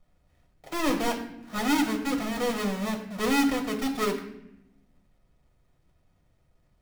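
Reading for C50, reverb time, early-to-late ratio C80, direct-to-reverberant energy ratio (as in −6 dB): 9.0 dB, 0.85 s, 11.0 dB, 1.5 dB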